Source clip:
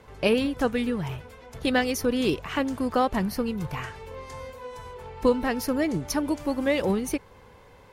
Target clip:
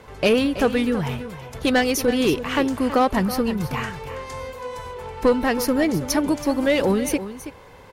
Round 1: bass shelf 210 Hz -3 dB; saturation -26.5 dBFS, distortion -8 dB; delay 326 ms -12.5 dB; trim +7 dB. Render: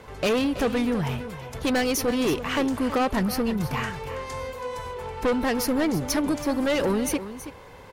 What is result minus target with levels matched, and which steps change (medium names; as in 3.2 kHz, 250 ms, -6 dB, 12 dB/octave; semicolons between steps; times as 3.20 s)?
saturation: distortion +9 dB
change: saturation -17 dBFS, distortion -17 dB